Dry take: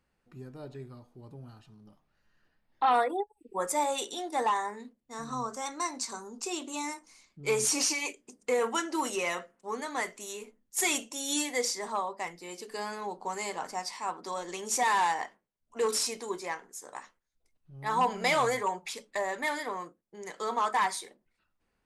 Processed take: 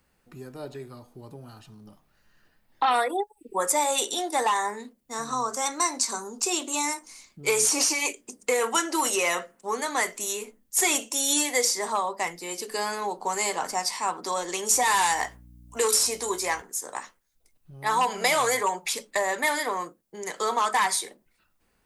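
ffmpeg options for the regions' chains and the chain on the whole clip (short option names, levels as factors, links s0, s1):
-filter_complex "[0:a]asettb=1/sr,asplit=3[s0][s1][s2];[s0]atrim=end=14.694[s3];[s1]atrim=start=14.69:end=16.62,asetpts=PTS-STARTPTS,afade=t=in:d=0.004:c=qsin,afade=t=out:st=1.926:d=0.004:c=qsin,highshelf=f=5800:g=7.5,asplit=2[s4][s5];[s5]adelay=16,volume=0.266[s6];[s4][s6]amix=inputs=2:normalize=0,atrim=end_sample=85113,aeval=exprs='val(0)+0.00158*(sin(2*PI*60*n/s)+sin(2*PI*2*60*n/s)/2+sin(2*PI*3*60*n/s)/3+sin(2*PI*4*60*n/s)/4+sin(2*PI*5*60*n/s)/5)':c=same[s7];[s2]atrim=start=16.616[s8];[s3][s7]acrossfade=d=0.004:c1=hsin:c2=qsin[s9];[s9][s8]acrossfade=d=0.004:c1=qsin:c2=hsin,highshelf=f=8100:g=11,acrossover=split=310|1500|7600[s10][s11][s12][s13];[s10]acompressor=threshold=0.00224:ratio=4[s14];[s11]acompressor=threshold=0.0282:ratio=4[s15];[s12]acompressor=threshold=0.0251:ratio=4[s16];[s13]acompressor=threshold=0.0158:ratio=4[s17];[s14][s15][s16][s17]amix=inputs=4:normalize=0,volume=2.37"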